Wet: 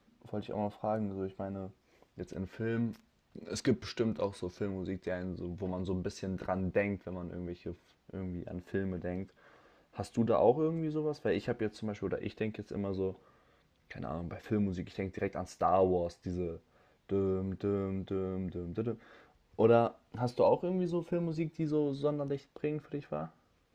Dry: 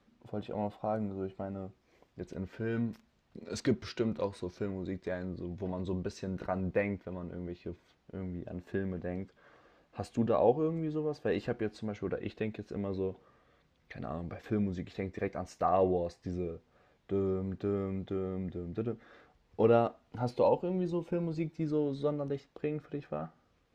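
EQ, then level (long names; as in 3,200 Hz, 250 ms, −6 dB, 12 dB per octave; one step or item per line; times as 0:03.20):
high-shelf EQ 5,400 Hz +4 dB
0.0 dB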